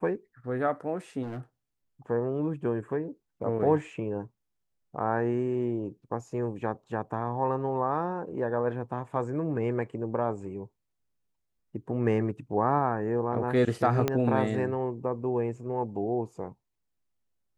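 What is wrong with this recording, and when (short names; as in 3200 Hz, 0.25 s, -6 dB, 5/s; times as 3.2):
1.22–1.4 clipped -33 dBFS
14.08 pop -12 dBFS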